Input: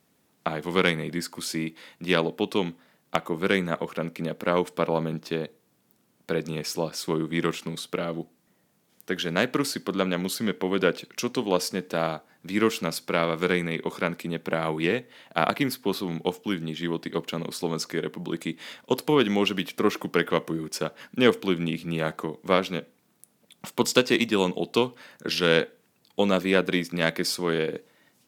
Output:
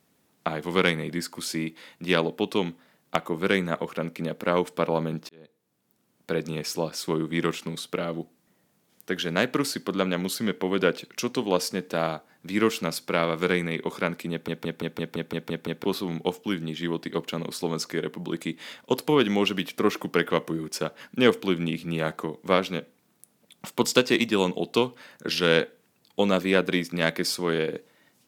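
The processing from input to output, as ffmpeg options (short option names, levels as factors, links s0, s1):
-filter_complex "[0:a]asplit=11[s0][s1][s2][s3][s4][s5][s6][s7][s8][s9][s10];[s0]atrim=end=5.29,asetpts=PTS-STARTPTS,afade=t=out:st=5.286:d=0.004:c=hsin[s11];[s1]atrim=start=5.29:end=14.482,asetpts=PTS-STARTPTS,afade=t=in:d=1.09[s12];[s2]atrim=start=14.308:end=14.482[s13];[s3]atrim=start=14.308:end=14.482[s14];[s4]atrim=start=14.308:end=14.482[s15];[s5]atrim=start=14.308:end=14.482[s16];[s6]atrim=start=14.308:end=14.482[s17];[s7]atrim=start=14.308:end=14.482[s18];[s8]atrim=start=14.308:end=14.482[s19];[s9]atrim=start=14.308:end=14.482[s20];[s10]atrim=start=15.838[s21];[s11][s12]concat=n=2:v=0:a=1[s22];[s22][s13]acrossfade=d=0.004:c1=hsin:c2=hsin[s23];[s23][s14]acrossfade=d=0.004:c1=hsin:c2=hsin[s24];[s24][s15]acrossfade=d=0.004:c1=hsin:c2=hsin[s25];[s25][s16]acrossfade=d=0.004:c1=hsin:c2=hsin[s26];[s26][s17]acrossfade=d=0.004:c1=hsin:c2=hsin[s27];[s27][s18]acrossfade=d=0.004:c1=hsin:c2=hsin[s28];[s28][s19]acrossfade=d=0.004:c1=hsin:c2=hsin[s29];[s29][s20]acrossfade=d=0.004:c1=hsin:c2=hsin[s30];[s30][s21]acrossfade=d=0.004:c1=hsin:c2=hsin"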